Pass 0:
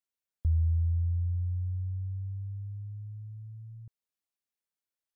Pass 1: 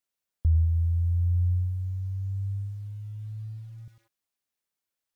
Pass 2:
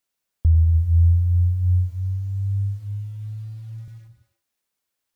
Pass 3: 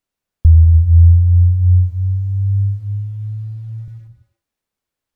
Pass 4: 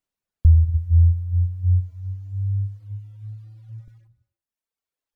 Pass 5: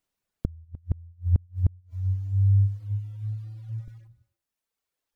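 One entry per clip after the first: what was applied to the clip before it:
feedback echo at a low word length 102 ms, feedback 35%, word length 10 bits, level −11.5 dB; level +4.5 dB
reverb whose tail is shaped and stops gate 360 ms flat, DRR 8 dB; level +6 dB
spectral tilt −2 dB per octave; level +1 dB
reverb reduction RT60 1.5 s; level −4.5 dB
gate with flip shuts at −15 dBFS, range −36 dB; level +4 dB

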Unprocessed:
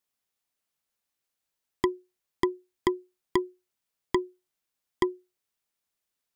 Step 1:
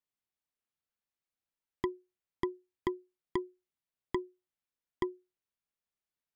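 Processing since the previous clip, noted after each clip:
bass and treble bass +4 dB, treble −7 dB
level −8.5 dB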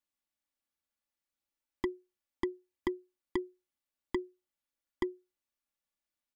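comb filter 3.5 ms, depth 65%
level −1 dB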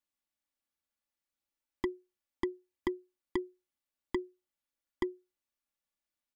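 no processing that can be heard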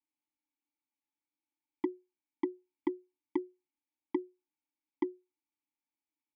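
formant filter u
level +9.5 dB

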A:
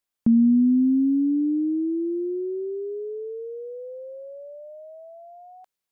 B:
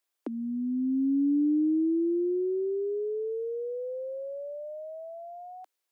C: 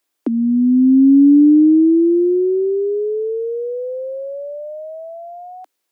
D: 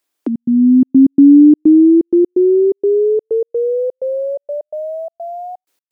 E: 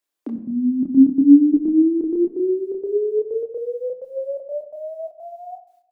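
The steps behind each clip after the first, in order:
Butterworth high-pass 280 Hz 72 dB per octave; in parallel at −2.5 dB: downward compressor, threshold −35 dBFS, peak gain reduction 12 dB; on the sum: level −2.5 dB
parametric band 250 Hz +8.5 dB 1.1 octaves; level +8.5 dB
gate pattern "xxx.xxx.x." 127 BPM −60 dB; automatic gain control gain up to 7 dB
rectangular room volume 300 cubic metres, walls mixed, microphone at 0.43 metres; multi-voice chorus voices 6, 0.93 Hz, delay 29 ms, depth 3.5 ms; level −5.5 dB

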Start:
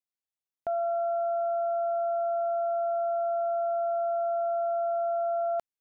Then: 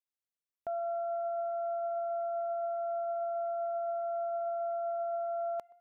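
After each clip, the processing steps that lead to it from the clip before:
tape delay 126 ms, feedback 80%, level −21.5 dB, low-pass 1,300 Hz
level −6 dB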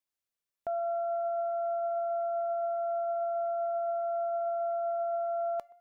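tuned comb filter 580 Hz, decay 0.22 s, harmonics all, mix 50%
level +8.5 dB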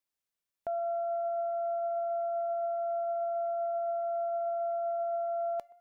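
dynamic equaliser 1,200 Hz, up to −6 dB, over −53 dBFS, Q 2.4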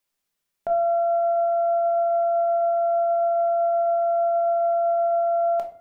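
rectangular room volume 380 cubic metres, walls furnished, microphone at 1.3 metres
level +8 dB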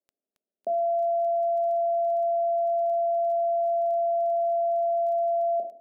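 elliptic band-pass filter 210–670 Hz, stop band 40 dB
brickwall limiter −21.5 dBFS, peak gain reduction 4 dB
surface crackle 15 per second −44 dBFS

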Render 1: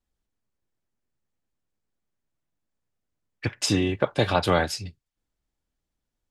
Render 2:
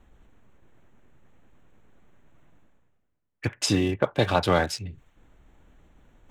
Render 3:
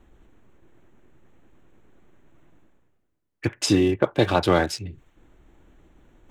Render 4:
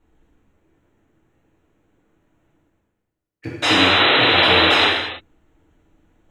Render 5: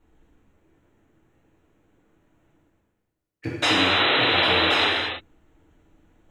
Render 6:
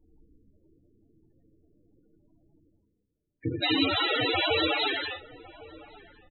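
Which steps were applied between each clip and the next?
adaptive Wiener filter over 9 samples; reversed playback; upward compression, threshold −33 dBFS; reversed playback
parametric band 340 Hz +7.5 dB 0.48 octaves; level +1 dB
sound drawn into the spectrogram noise, 0:03.62–0:04.87, 250–4,100 Hz −12 dBFS; reverb whose tail is shaped and stops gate 350 ms falling, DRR −5.5 dB; level −9.5 dB
downward compressor 2.5 to 1, threshold −19 dBFS, peak gain reduction 6.5 dB
spectral peaks only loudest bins 16; slap from a distant wall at 190 metres, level −19 dB

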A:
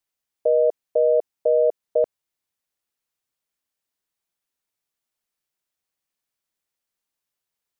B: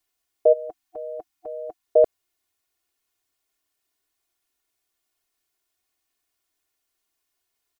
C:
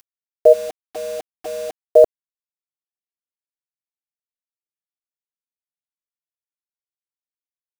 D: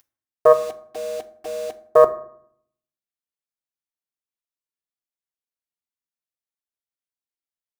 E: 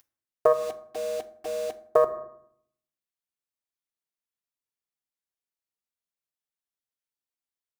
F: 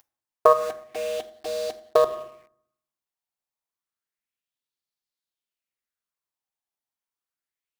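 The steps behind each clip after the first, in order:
gain on a spectral selection 0:00.53–0:01.86, 330–730 Hz −20 dB; comb filter 2.8 ms, depth 87%; level +3.5 dB
upward compression, threshold −36 dBFS; bit reduction 7 bits; level +6 dB
phase distortion by the signal itself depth 0.19 ms; convolution reverb RT60 0.65 s, pre-delay 4 ms, DRR 10 dB; level −2.5 dB
downward compressor 6 to 1, threshold −14 dBFS, peak gain reduction 7.5 dB; level −2 dB
in parallel at −9.5 dB: log-companded quantiser 4 bits; on the sum: auto-filter bell 0.3 Hz 790–4,400 Hz +9 dB; level −1 dB

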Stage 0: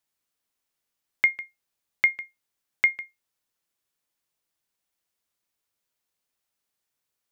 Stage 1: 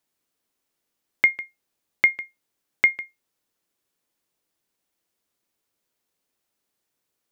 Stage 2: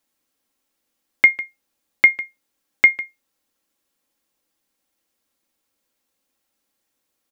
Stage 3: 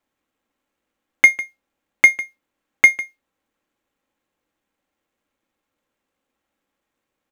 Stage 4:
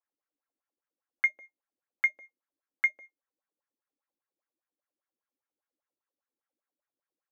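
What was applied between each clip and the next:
parametric band 320 Hz +7 dB 1.9 octaves; level +2.5 dB
comb filter 3.7 ms, depth 46%; level +3 dB
running median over 9 samples; level +2.5 dB
LFO wah 5 Hz 280–1,700 Hz, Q 3.8; level −8 dB

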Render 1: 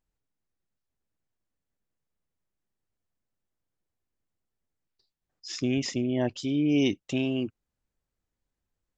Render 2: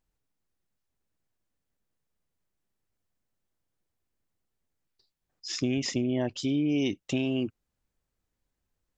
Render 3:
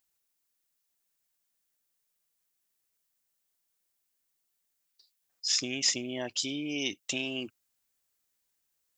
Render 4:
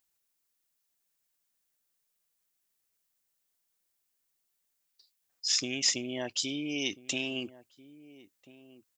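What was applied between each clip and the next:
downward compressor, threshold −26 dBFS, peak gain reduction 6.5 dB; level +2.5 dB
spectral tilt +4 dB per octave; level −2 dB
slap from a distant wall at 230 metres, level −18 dB

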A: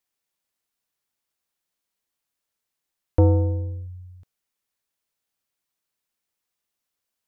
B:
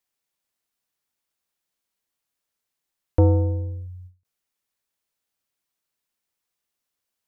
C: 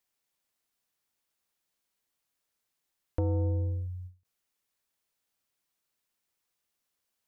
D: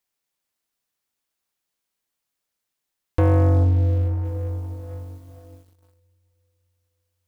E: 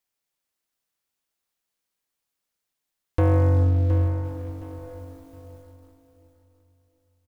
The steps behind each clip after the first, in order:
every ending faded ahead of time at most 220 dB per second
brickwall limiter −19 dBFS, peak gain reduction 9.5 dB; downward compressor, threshold −26 dBFS, peak gain reduction 5 dB
feedback delay with all-pass diffusion 458 ms, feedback 50%, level −12.5 dB; leveller curve on the samples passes 3; level +6.5 dB
repeating echo 717 ms, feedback 28%, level −10.5 dB; on a send at −11.5 dB: convolution reverb RT60 0.95 s, pre-delay 105 ms; on the sum: level −2 dB

